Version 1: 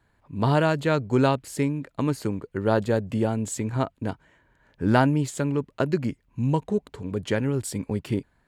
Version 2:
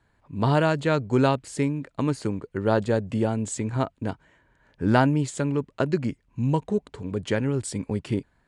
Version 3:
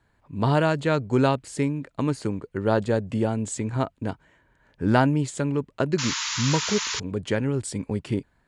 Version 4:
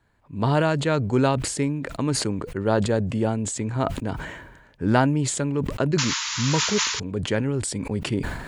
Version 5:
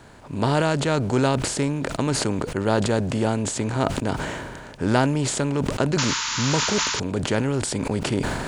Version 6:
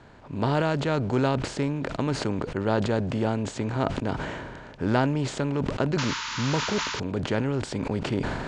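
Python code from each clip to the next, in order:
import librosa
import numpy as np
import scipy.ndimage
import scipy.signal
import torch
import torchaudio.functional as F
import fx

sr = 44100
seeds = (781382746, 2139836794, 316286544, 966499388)

y1 = scipy.signal.sosfilt(scipy.signal.butter(8, 10000.0, 'lowpass', fs=sr, output='sos'), x)
y2 = fx.spec_paint(y1, sr, seeds[0], shape='noise', start_s=5.98, length_s=1.02, low_hz=870.0, high_hz=7300.0, level_db=-29.0)
y3 = fx.sustainer(y2, sr, db_per_s=48.0)
y4 = fx.bin_compress(y3, sr, power=0.6)
y4 = y4 * 10.0 ** (-2.5 / 20.0)
y5 = fx.air_absorb(y4, sr, metres=120.0)
y5 = y5 * 10.0 ** (-3.0 / 20.0)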